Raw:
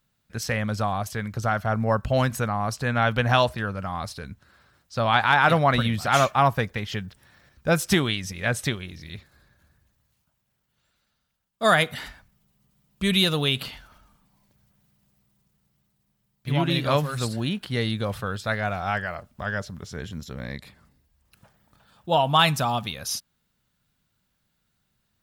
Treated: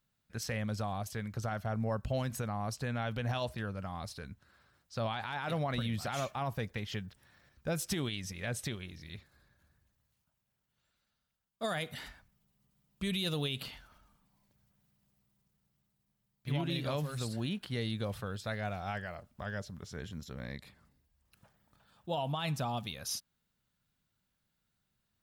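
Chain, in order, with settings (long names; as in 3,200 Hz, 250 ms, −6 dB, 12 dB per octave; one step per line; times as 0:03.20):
0:22.32–0:22.77: high-shelf EQ 4,100 Hz −7.5 dB
brickwall limiter −15 dBFS, peak gain reduction 10 dB
dynamic equaliser 1,300 Hz, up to −6 dB, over −38 dBFS, Q 0.95
level −8 dB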